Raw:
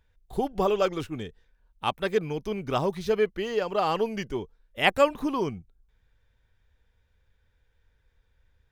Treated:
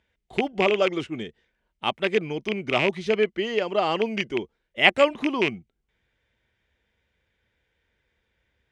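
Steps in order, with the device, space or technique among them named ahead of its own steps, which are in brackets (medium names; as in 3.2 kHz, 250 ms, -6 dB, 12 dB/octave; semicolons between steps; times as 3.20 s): car door speaker with a rattle (rattle on loud lows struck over -32 dBFS, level -17 dBFS; cabinet simulation 82–8700 Hz, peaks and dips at 95 Hz -7 dB, 220 Hz +5 dB, 350 Hz +7 dB, 640 Hz +5 dB, 2.1 kHz +9 dB, 3 kHz +7 dB); trim -1 dB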